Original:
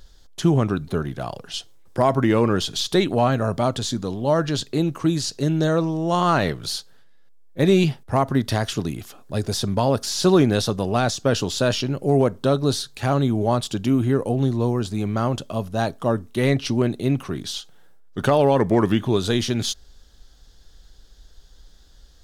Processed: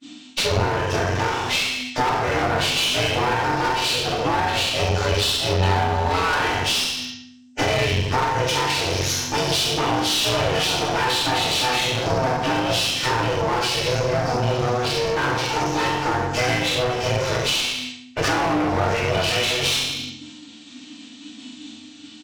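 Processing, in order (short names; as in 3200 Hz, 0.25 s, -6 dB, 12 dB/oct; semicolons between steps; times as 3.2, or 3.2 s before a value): nonlinear frequency compression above 1500 Hz 1.5:1; ring modulator 250 Hz; tilt +4.5 dB/oct; expander -47 dBFS; on a send: early reflections 24 ms -6.5 dB, 44 ms -6 dB, 67 ms -4 dB; on the sum: FDN reverb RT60 0.63 s, low-frequency decay 1.45×, high-frequency decay 0.95×, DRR -7 dB; in parallel at -5.5 dB: sine folder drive 11 dB, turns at 4.5 dBFS; on the sum: compressor 6:1, threshold -16 dBFS, peak gain reduction 15 dB; bell 97 Hz +13.5 dB 0.45 oct; one-sided clip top -26 dBFS; gain -1 dB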